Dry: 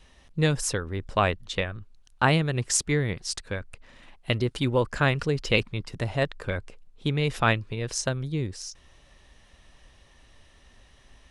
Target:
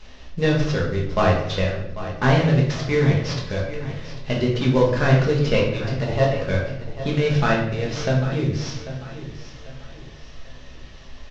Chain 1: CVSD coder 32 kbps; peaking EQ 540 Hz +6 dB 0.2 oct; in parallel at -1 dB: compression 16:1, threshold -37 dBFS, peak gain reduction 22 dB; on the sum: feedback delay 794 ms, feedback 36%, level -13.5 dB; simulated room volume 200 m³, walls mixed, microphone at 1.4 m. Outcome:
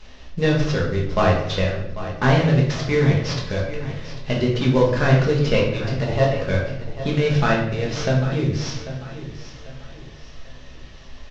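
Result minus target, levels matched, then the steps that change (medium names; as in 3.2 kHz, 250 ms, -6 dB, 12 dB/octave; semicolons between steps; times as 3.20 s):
compression: peak gain reduction -9.5 dB
change: compression 16:1, threshold -47 dBFS, peak gain reduction 31 dB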